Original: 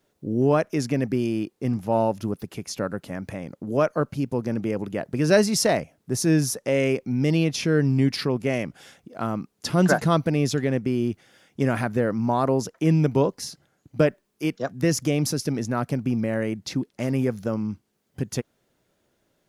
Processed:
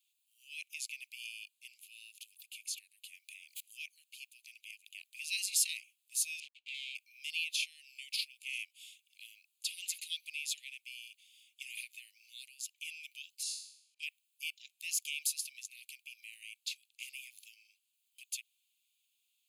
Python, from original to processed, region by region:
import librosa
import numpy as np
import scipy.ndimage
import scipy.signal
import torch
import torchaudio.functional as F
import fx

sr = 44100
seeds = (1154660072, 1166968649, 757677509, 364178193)

y = fx.chain(x, sr, fx.peak_eq(hz=260.0, db=-7.0, octaves=0.4),
    fx.pre_swell(db_per_s=57.0), at=(3.32, 3.86))
y = fx.chain(y, sr, fx.dead_time(dead_ms=0.22),
    fx.lowpass(hz=2700.0, slope=12), at=(6.4, 6.95))
y = fx.chain(y, sr, fx.lowpass(hz=9800.0, slope=24),
    fx.room_flutter(wall_m=3.6, rt60_s=0.63),
    fx.auto_swell(attack_ms=152.0), at=(13.43, 14.03))
y = scipy.signal.sosfilt(scipy.signal.butter(16, 2400.0, 'highpass', fs=sr, output='sos'), y)
y = fx.peak_eq(y, sr, hz=5400.0, db=-10.5, octaves=0.44)
y = fx.notch(y, sr, hz=5800.0, q=13.0)